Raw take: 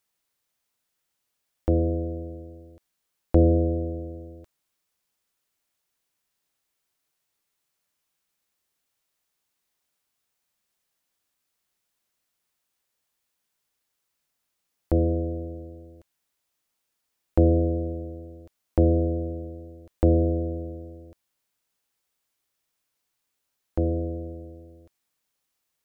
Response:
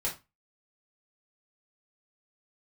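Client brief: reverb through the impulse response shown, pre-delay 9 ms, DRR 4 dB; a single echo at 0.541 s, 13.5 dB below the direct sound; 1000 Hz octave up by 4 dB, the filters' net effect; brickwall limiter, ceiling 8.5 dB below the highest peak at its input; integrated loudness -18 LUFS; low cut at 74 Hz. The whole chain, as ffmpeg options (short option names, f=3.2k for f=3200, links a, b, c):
-filter_complex "[0:a]highpass=74,equalizer=f=1k:t=o:g=7.5,alimiter=limit=-14.5dB:level=0:latency=1,aecho=1:1:541:0.211,asplit=2[a][b];[1:a]atrim=start_sample=2205,adelay=9[c];[b][c]afir=irnorm=-1:irlink=0,volume=-8.5dB[d];[a][d]amix=inputs=2:normalize=0,volume=8.5dB"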